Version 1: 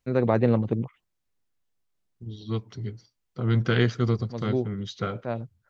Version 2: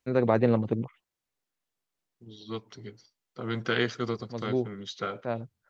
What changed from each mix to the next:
second voice: add high-pass filter 330 Hz 6 dB per octave
master: add low-shelf EQ 150 Hz −7 dB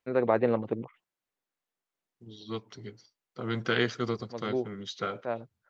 first voice: add bass and treble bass −10 dB, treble −13 dB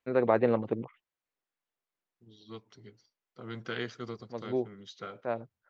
second voice −9.0 dB

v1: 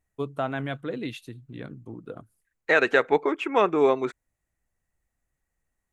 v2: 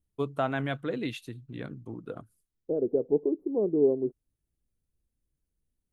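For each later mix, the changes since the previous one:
second voice: add inverse Chebyshev band-stop filter 1,900–6,200 Hz, stop band 80 dB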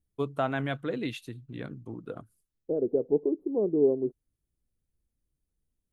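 nothing changed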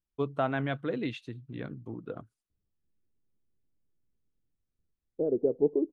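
second voice: entry +2.50 s
master: add high-frequency loss of the air 110 metres

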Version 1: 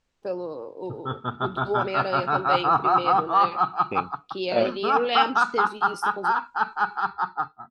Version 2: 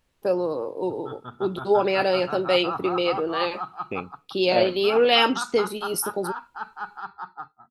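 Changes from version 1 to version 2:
first voice +7.0 dB
background −10.0 dB
master: remove low-pass filter 7,800 Hz 24 dB per octave

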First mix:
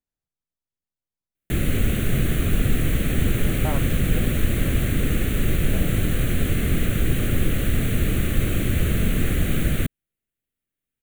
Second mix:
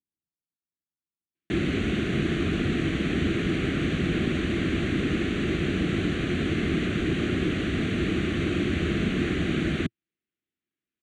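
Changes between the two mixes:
speech: add Gaussian smoothing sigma 20 samples
master: add loudspeaker in its box 110–5,600 Hz, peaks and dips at 120 Hz −9 dB, 340 Hz +7 dB, 530 Hz −8 dB

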